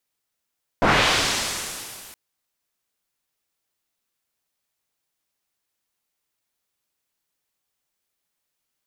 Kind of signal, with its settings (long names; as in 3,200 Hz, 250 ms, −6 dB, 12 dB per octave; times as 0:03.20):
filter sweep on noise white, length 1.32 s lowpass, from 740 Hz, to 14,000 Hz, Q 0.83, linear, gain ramp −38 dB